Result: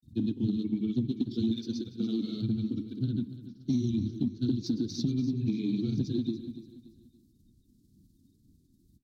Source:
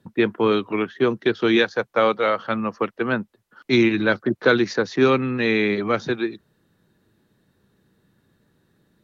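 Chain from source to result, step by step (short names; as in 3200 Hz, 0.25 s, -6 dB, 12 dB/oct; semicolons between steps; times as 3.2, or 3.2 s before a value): bin magnitudes rounded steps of 30 dB; elliptic band-stop 280–4000 Hz, stop band 40 dB; on a send at -14.5 dB: reverb RT60 0.90 s, pre-delay 5 ms; on the sum: grains, grains 20/s, pitch spread up and down by 0 st; low shelf 320 Hz +4.5 dB; phaser 2 Hz, delay 4.3 ms, feedback 45%; compressor 6:1, threshold -26 dBFS, peak gain reduction 13 dB; feedback echo 0.288 s, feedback 36%, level -13.5 dB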